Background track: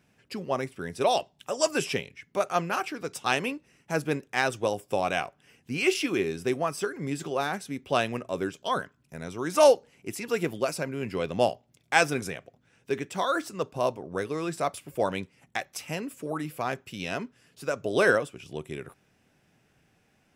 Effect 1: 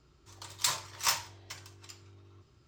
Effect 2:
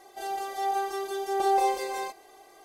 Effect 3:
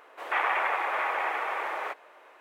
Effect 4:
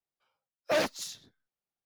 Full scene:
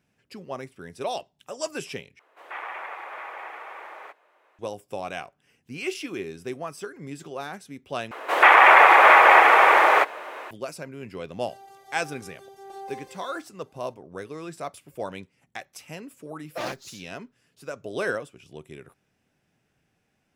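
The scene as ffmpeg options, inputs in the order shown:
-filter_complex "[3:a]asplit=2[s0][s1];[0:a]volume=0.501[s2];[s1]alimiter=level_in=7.94:limit=0.891:release=50:level=0:latency=1[s3];[4:a]aecho=1:1:5.8:0.43[s4];[s2]asplit=3[s5][s6][s7];[s5]atrim=end=2.194[s8];[s0]atrim=end=2.4,asetpts=PTS-STARTPTS,volume=0.355[s9];[s6]atrim=start=4.586:end=8.114[s10];[s3]atrim=end=2.4,asetpts=PTS-STARTPTS,volume=0.841[s11];[s7]atrim=start=10.506[s12];[2:a]atrim=end=2.64,asetpts=PTS-STARTPTS,volume=0.158,afade=t=in:d=0.004:c=hsin,afade=t=out:st=2.636:d=0.004:c=hsin,adelay=498330S[s13];[s4]atrim=end=1.85,asetpts=PTS-STARTPTS,volume=0.531,afade=t=in:d=0.004:c=hsin,afade=t=out:st=1.846:d=0.004:c=hsin,adelay=15860[s14];[s8][s9]acrossfade=d=0.004:c1=hsin:c2=hsin[s15];[s15][s10]acrossfade=d=0.004:c1=hsin:c2=hsin[s16];[s16][s11]acrossfade=d=0.004:c1=hsin:c2=hsin[s17];[s17][s12]acrossfade=d=0.004:c1=hsin:c2=hsin[s18];[s18][s13][s14]amix=inputs=3:normalize=0"

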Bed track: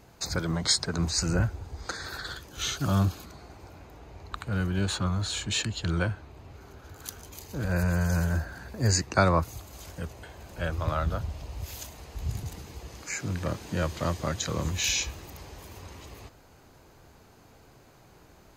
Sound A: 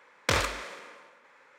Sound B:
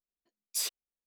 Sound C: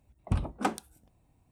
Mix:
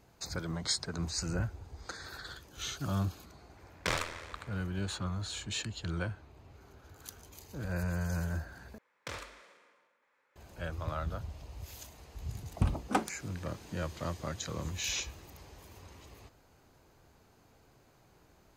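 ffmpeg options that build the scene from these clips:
-filter_complex "[1:a]asplit=2[s0][s1];[0:a]volume=0.398[s2];[s0]aeval=exprs='val(0)*sin(2*PI*41*n/s)':c=same[s3];[2:a]aresample=8000,aresample=44100[s4];[s2]asplit=2[s5][s6];[s5]atrim=end=8.784[s7];[s1]atrim=end=1.58,asetpts=PTS-STARTPTS,volume=0.15[s8];[s6]atrim=start=10.356[s9];[s3]atrim=end=1.58,asetpts=PTS-STARTPTS,volume=0.668,afade=t=in:d=0.004:c=hsin,afade=t=out:st=1.576:d=0.004:c=hsin,adelay=157437S[s10];[3:a]atrim=end=1.51,asetpts=PTS-STARTPTS,volume=0.944,afade=t=in:d=0.004:c=hsin,afade=t=out:st=1.506:d=0.004:c=hsin,adelay=12300[s11];[s4]atrim=end=1.06,asetpts=PTS-STARTPTS,volume=0.944,afade=t=in:d=0.004:c=hsin,afade=t=out:st=1.056:d=0.004:c=hsin,adelay=14320[s12];[s7][s8]acrossfade=d=0.004:c1=hsin:c2=hsin[s13];[s13][s9]acrossfade=d=0.004:c1=hsin:c2=hsin[s14];[s14][s10][s11][s12]amix=inputs=4:normalize=0"

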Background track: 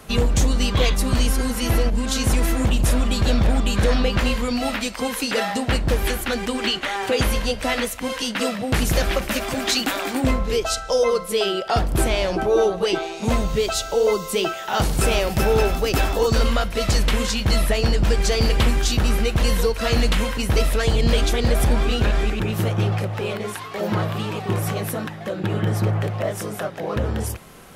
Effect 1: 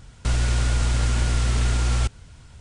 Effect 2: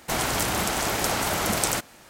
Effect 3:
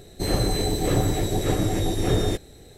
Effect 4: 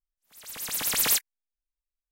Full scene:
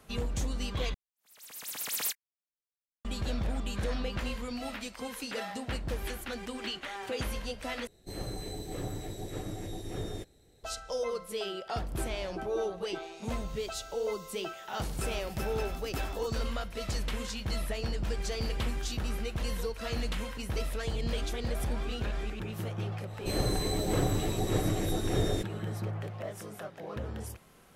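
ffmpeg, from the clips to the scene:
-filter_complex "[3:a]asplit=2[s0][s1];[0:a]volume=0.188[s2];[4:a]highpass=f=210:p=1[s3];[s2]asplit=3[s4][s5][s6];[s4]atrim=end=0.944[s7];[s3]atrim=end=2.11,asetpts=PTS-STARTPTS,volume=0.335[s8];[s5]atrim=start=3.046:end=7.874[s9];[s0]atrim=end=2.77,asetpts=PTS-STARTPTS,volume=0.168[s10];[s6]atrim=start=10.636[s11];[s1]atrim=end=2.77,asetpts=PTS-STARTPTS,volume=0.447,afade=t=in:d=0.05,afade=t=out:st=2.72:d=0.05,adelay=23060[s12];[s7][s8]acrossfade=d=0.004:c1=hsin:c2=hsin[s13];[s13][s9]acrossfade=d=0.004:c1=hsin:c2=hsin[s14];[s14][s10]acrossfade=d=0.004:c1=hsin:c2=hsin[s15];[s15][s11]acrossfade=d=0.004:c1=hsin:c2=hsin[s16];[s16][s12]amix=inputs=2:normalize=0"

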